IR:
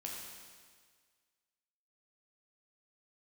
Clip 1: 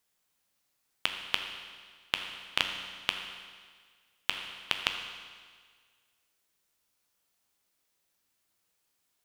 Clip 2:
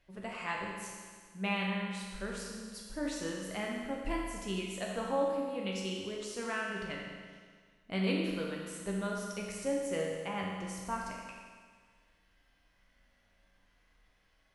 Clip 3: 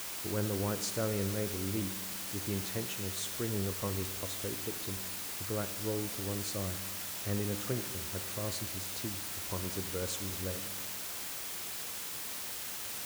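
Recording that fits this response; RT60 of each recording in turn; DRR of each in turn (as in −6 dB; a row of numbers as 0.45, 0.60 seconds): 2; 1.7, 1.7, 1.7 seconds; 4.0, −3.0, 8.5 decibels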